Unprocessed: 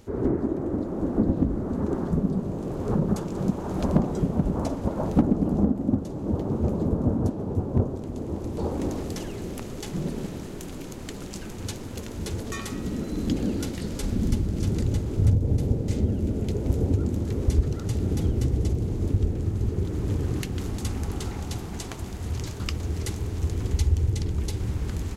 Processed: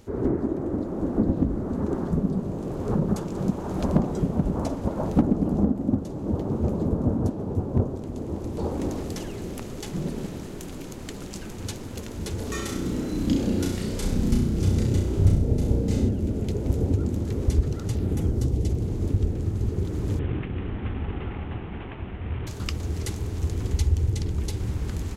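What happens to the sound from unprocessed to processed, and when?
12.37–16.09 s: flutter echo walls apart 5.6 m, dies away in 0.57 s
17.94–18.69 s: peaking EQ 9.1 kHz -> 1.1 kHz -8 dB
20.19–22.47 s: CVSD coder 16 kbps

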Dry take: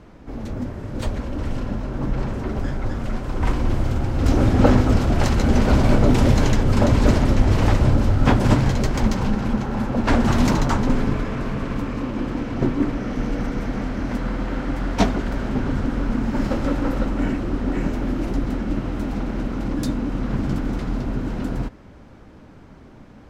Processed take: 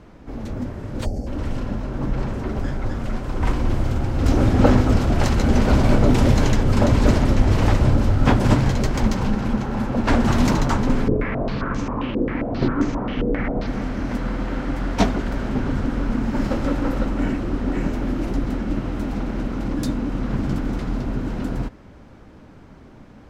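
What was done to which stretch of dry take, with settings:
1.05–1.27 s: time-frequency box 850–4300 Hz -21 dB
11.08–13.67 s: step-sequenced low-pass 7.5 Hz 460–6400 Hz

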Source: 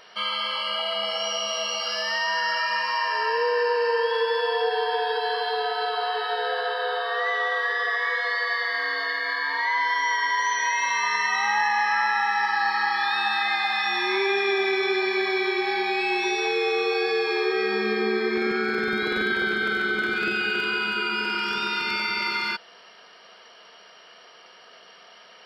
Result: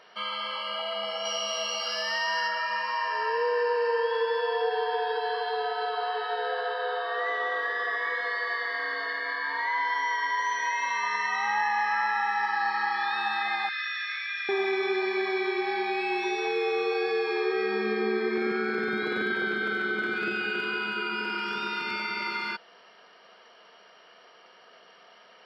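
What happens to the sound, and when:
1.25–2.48 s: treble shelf 3.8 kHz +9.5 dB
6.91–10.06 s: frequency-shifting echo 124 ms, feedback 56%, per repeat -58 Hz, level -17.5 dB
13.69–14.49 s: Chebyshev band-pass 1.3–6.6 kHz, order 5
whole clip: high-pass 130 Hz; treble shelf 3.1 kHz -9 dB; trim -2.5 dB

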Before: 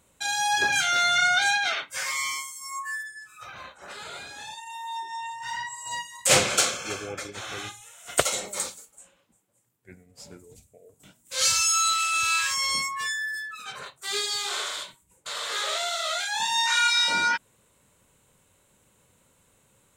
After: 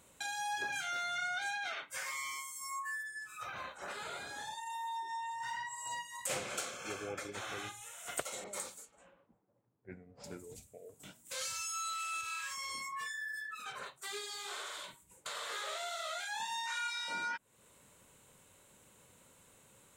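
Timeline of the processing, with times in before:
4.18–5.48 s: band-stop 2.6 kHz, Q 5.5
8.44–10.24 s: level-controlled noise filter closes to 830 Hz, open at -33.5 dBFS
12.21–14.84 s: flange 2 Hz, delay 2 ms, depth 3.7 ms, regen -54%
whole clip: bass shelf 130 Hz -6 dB; compression 3:1, threshold -40 dBFS; dynamic bell 4.7 kHz, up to -6 dB, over -53 dBFS, Q 0.77; trim +1 dB

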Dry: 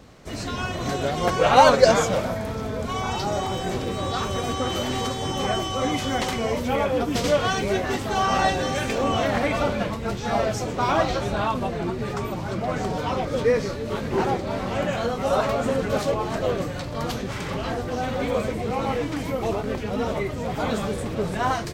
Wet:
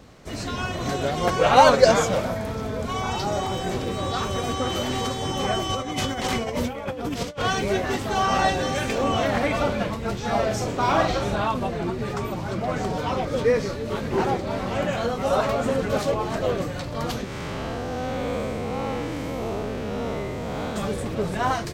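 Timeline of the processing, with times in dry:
5.69–7.42 s: compressor with a negative ratio -27 dBFS, ratio -0.5
10.46–11.36 s: doubling 44 ms -6 dB
17.24–20.76 s: spectral blur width 231 ms

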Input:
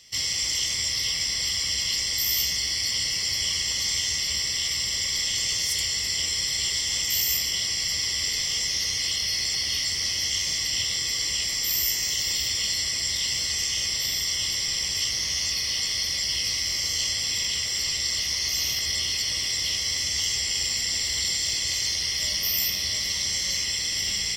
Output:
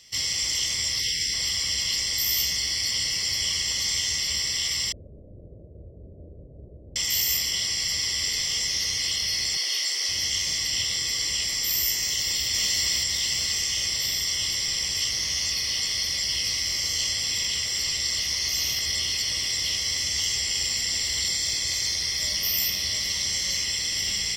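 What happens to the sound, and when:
1.00–1.33 s: spectral selection erased 530–1500 Hz
4.92–6.96 s: Chebyshev low-pass 610 Hz, order 5
9.57–10.09 s: high-pass 350 Hz 24 dB/octave
11.97–12.47 s: echo throw 560 ms, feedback 50%, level -2 dB
21.28–22.36 s: band-stop 2.9 kHz, Q 8

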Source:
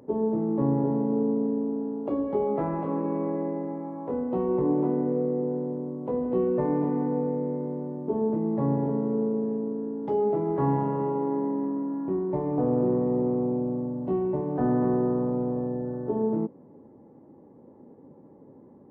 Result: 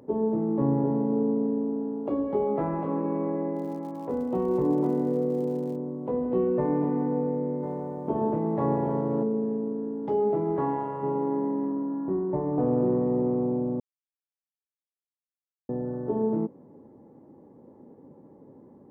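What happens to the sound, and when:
3.55–5.75 s: crackle 120 per s -43 dBFS
7.62–9.22 s: spectral peaks clipped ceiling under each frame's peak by 13 dB
10.59–11.02 s: peaking EQ 90 Hz -> 250 Hz -14.5 dB 1.6 oct
11.72–12.58 s: low-pass 1.9 kHz 24 dB/octave
13.80–15.69 s: mute

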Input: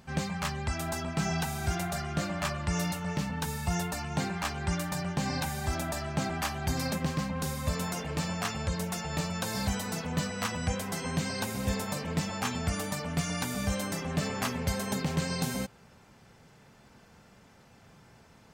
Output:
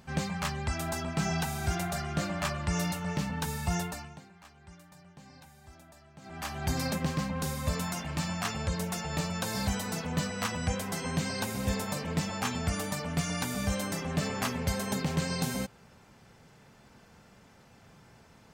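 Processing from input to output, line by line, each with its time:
3.75–6.67 s: dip -21.5 dB, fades 0.45 s
7.80–8.46 s: peaking EQ 450 Hz -14 dB 0.34 oct

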